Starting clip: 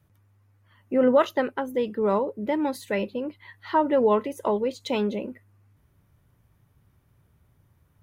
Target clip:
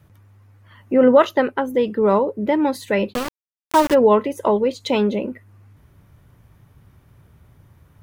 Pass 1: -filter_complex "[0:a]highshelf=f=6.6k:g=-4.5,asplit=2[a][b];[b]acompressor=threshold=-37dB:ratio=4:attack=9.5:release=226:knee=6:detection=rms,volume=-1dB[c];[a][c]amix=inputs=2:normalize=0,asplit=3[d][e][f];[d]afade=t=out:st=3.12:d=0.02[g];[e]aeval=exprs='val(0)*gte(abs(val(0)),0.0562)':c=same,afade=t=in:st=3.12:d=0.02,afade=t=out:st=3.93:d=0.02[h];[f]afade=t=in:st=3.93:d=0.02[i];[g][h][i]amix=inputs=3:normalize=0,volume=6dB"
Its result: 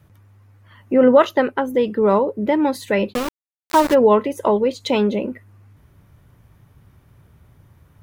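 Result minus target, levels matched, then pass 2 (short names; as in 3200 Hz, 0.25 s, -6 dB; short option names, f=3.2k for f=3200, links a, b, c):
compressor: peak gain reduction -5 dB
-filter_complex "[0:a]highshelf=f=6.6k:g=-4.5,asplit=2[a][b];[b]acompressor=threshold=-44dB:ratio=4:attack=9.5:release=226:knee=6:detection=rms,volume=-1dB[c];[a][c]amix=inputs=2:normalize=0,asplit=3[d][e][f];[d]afade=t=out:st=3.12:d=0.02[g];[e]aeval=exprs='val(0)*gte(abs(val(0)),0.0562)':c=same,afade=t=in:st=3.12:d=0.02,afade=t=out:st=3.93:d=0.02[h];[f]afade=t=in:st=3.93:d=0.02[i];[g][h][i]amix=inputs=3:normalize=0,volume=6dB"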